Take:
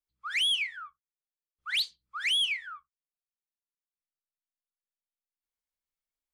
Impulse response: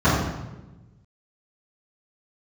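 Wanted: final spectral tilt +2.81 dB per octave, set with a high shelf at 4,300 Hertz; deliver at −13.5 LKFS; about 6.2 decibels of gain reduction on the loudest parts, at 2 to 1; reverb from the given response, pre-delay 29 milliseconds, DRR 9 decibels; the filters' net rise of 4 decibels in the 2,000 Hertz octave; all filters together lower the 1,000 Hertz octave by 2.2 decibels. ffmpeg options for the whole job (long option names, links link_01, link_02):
-filter_complex "[0:a]equalizer=frequency=1000:width_type=o:gain=-7,equalizer=frequency=2000:width_type=o:gain=4.5,highshelf=frequency=4300:gain=6.5,acompressor=threshold=-32dB:ratio=2,asplit=2[link_01][link_02];[1:a]atrim=start_sample=2205,adelay=29[link_03];[link_02][link_03]afir=irnorm=-1:irlink=0,volume=-31dB[link_04];[link_01][link_04]amix=inputs=2:normalize=0,volume=16.5dB"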